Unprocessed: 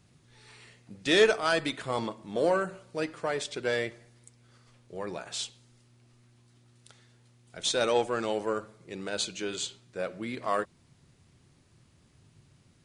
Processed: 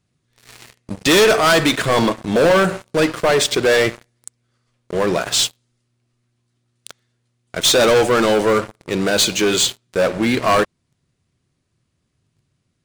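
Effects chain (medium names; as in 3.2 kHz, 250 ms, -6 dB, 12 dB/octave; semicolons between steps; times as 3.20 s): band-stop 860 Hz, Q 12; waveshaping leveller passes 5; trim +2 dB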